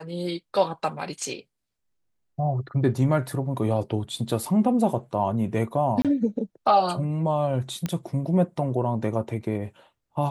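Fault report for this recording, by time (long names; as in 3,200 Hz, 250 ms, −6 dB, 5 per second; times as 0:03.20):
0:06.02–0:06.05: drop-out 27 ms
0:07.86: click −14 dBFS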